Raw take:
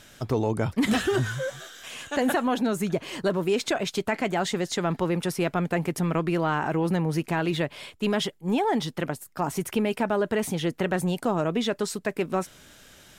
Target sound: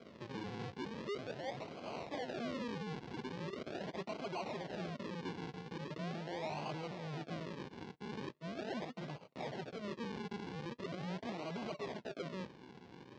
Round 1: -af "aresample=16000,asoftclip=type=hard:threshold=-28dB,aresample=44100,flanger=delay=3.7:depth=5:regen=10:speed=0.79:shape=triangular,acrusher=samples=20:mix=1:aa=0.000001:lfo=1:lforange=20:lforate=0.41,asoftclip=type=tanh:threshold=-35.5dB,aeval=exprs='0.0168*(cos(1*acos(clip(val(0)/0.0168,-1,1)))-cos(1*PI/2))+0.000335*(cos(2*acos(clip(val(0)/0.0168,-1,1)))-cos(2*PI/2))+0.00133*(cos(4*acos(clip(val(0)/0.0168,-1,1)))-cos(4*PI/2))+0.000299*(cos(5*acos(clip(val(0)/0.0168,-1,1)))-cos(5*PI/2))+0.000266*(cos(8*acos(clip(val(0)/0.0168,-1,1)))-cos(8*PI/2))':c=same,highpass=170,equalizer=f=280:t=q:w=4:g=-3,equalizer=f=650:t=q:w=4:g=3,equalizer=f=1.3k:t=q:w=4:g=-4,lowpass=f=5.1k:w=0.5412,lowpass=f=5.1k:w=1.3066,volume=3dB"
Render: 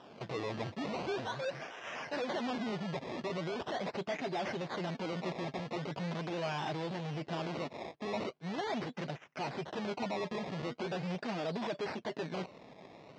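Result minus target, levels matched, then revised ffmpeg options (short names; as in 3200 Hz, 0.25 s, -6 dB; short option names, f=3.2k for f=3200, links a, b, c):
decimation with a swept rate: distortion -8 dB; hard clip: distortion -4 dB
-af "aresample=16000,asoftclip=type=hard:threshold=-39dB,aresample=44100,flanger=delay=3.7:depth=5:regen=10:speed=0.79:shape=triangular,acrusher=samples=48:mix=1:aa=0.000001:lfo=1:lforange=48:lforate=0.41,asoftclip=type=tanh:threshold=-35.5dB,aeval=exprs='0.0168*(cos(1*acos(clip(val(0)/0.0168,-1,1)))-cos(1*PI/2))+0.000335*(cos(2*acos(clip(val(0)/0.0168,-1,1)))-cos(2*PI/2))+0.00133*(cos(4*acos(clip(val(0)/0.0168,-1,1)))-cos(4*PI/2))+0.000299*(cos(5*acos(clip(val(0)/0.0168,-1,1)))-cos(5*PI/2))+0.000266*(cos(8*acos(clip(val(0)/0.0168,-1,1)))-cos(8*PI/2))':c=same,highpass=170,equalizer=f=280:t=q:w=4:g=-3,equalizer=f=650:t=q:w=4:g=3,equalizer=f=1.3k:t=q:w=4:g=-4,lowpass=f=5.1k:w=0.5412,lowpass=f=5.1k:w=1.3066,volume=3dB"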